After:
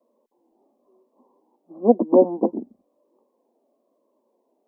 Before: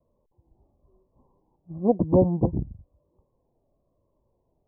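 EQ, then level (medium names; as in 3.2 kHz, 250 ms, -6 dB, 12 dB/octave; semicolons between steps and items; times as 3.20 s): elliptic high-pass 230 Hz, stop band 40 dB; +6.0 dB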